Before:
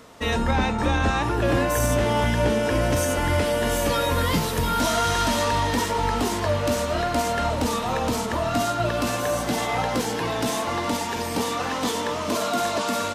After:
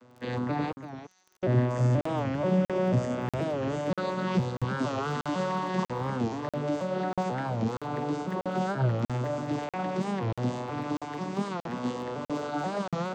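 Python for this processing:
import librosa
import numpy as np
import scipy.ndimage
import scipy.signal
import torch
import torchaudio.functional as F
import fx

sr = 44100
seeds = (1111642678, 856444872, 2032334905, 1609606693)

p1 = fx.vocoder_arp(x, sr, chord='minor triad', root=47, every_ms=486)
p2 = fx.bandpass_q(p1, sr, hz=6100.0, q=12.0, at=(0.72, 1.43))
p3 = fx.dmg_crackle(p2, sr, seeds[0], per_s=12.0, level_db=-38.0)
p4 = p3 + fx.echo_single(p3, sr, ms=346, db=-11.5, dry=0)
p5 = fx.buffer_crackle(p4, sr, first_s=0.73, period_s=0.64, block=2048, kind='zero')
p6 = fx.record_warp(p5, sr, rpm=45.0, depth_cents=160.0)
y = p6 * librosa.db_to_amplitude(-4.5)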